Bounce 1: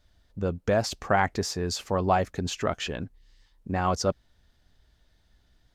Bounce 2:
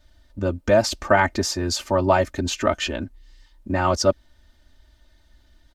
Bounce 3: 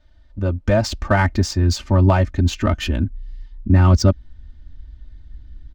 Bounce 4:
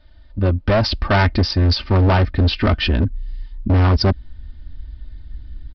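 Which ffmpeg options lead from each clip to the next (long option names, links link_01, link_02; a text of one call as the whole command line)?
ffmpeg -i in.wav -af "aecho=1:1:3.3:1,volume=3.5dB" out.wav
ffmpeg -i in.wav -af "asubboost=boost=11:cutoff=200,adynamicsmooth=sensitivity=3:basefreq=4500" out.wav
ffmpeg -i in.wav -af "crystalizer=i=1:c=0,aresample=11025,asoftclip=type=hard:threshold=-16.5dB,aresample=44100,volume=5dB" out.wav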